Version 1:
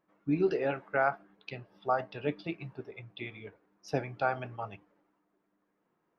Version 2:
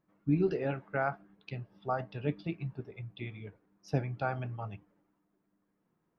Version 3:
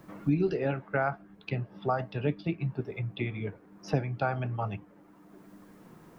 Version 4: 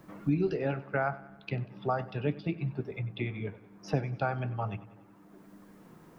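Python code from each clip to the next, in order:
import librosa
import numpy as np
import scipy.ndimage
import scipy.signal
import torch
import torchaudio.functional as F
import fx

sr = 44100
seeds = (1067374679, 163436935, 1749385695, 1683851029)

y1 = fx.bass_treble(x, sr, bass_db=12, treble_db=0)
y1 = y1 * librosa.db_to_amplitude(-4.5)
y2 = fx.band_squash(y1, sr, depth_pct=70)
y2 = y2 * librosa.db_to_amplitude(4.0)
y3 = fx.echo_feedback(y2, sr, ms=95, feedback_pct=55, wet_db=-18.5)
y3 = y3 * librosa.db_to_amplitude(-1.5)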